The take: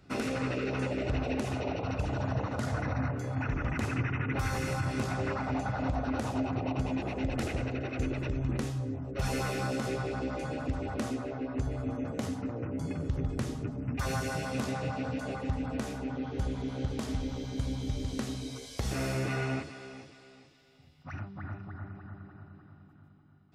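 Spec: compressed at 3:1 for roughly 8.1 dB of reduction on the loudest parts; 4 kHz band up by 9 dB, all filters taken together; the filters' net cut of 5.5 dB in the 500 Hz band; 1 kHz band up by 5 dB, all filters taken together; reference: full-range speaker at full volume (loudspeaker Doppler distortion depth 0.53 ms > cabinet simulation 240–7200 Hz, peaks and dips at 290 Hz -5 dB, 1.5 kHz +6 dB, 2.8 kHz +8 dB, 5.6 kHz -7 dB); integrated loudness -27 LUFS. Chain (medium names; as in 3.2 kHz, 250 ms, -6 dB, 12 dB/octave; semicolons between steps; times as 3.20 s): peaking EQ 500 Hz -9 dB; peaking EQ 1 kHz +8 dB; peaking EQ 4 kHz +8 dB; compression 3:1, threshold -38 dBFS; loudspeaker Doppler distortion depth 0.53 ms; cabinet simulation 240–7200 Hz, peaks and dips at 290 Hz -5 dB, 1.5 kHz +6 dB, 2.8 kHz +8 dB, 5.6 kHz -7 dB; trim +13.5 dB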